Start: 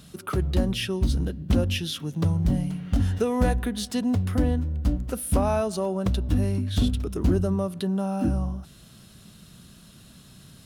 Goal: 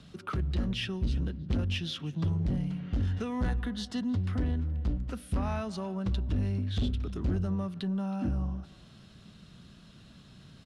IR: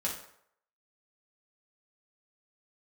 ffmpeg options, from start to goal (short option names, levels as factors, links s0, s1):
-filter_complex "[0:a]lowpass=4500,asettb=1/sr,asplit=3[s0][s1][s2];[s0]atrim=end=3.404[s3];[s1]atrim=start=3.4:end=4.17,asetpts=PTS-STARTPTS,afade=t=in:d=0.004:c=qsin,afade=t=out:st=0.766:d=0.004:c=qsin,bandreject=f=2400:w=5.1[s4];[s2]atrim=start=4.166[s5];[s3][s4]acrossfade=d=0.004:c1=hsin:c2=qsin[s6];[s6][s5]acrossfade=d=0.004:c1=qsin:c2=hsin,acrossover=split=290|910|2300[s7][s8][s9][s10];[s8]acompressor=threshold=0.00631:ratio=6[s11];[s7][s11][s9][s10]amix=inputs=4:normalize=0,asoftclip=type=tanh:threshold=0.1,asplit=2[s12][s13];[s13]adelay=320,highpass=300,lowpass=3400,asoftclip=type=hard:threshold=0.0355,volume=0.126[s14];[s12][s14]amix=inputs=2:normalize=0,volume=0.708"